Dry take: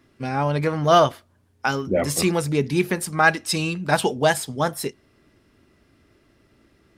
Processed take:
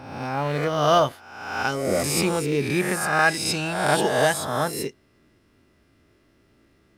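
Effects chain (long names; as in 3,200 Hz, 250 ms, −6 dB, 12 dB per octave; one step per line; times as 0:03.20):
peak hold with a rise ahead of every peak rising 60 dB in 1.05 s
log-companded quantiser 8 bits
level −4.5 dB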